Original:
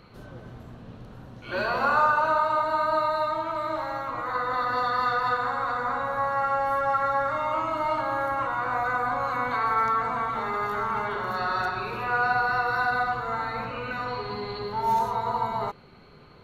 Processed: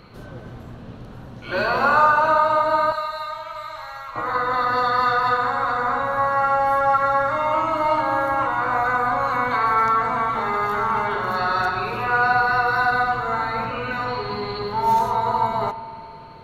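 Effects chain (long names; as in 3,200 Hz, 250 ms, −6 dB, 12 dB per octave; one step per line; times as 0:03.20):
0:02.92–0:04.16: guitar amp tone stack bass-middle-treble 10-0-10
spring reverb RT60 2.9 s, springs 52 ms, chirp 65 ms, DRR 14 dB
level +5.5 dB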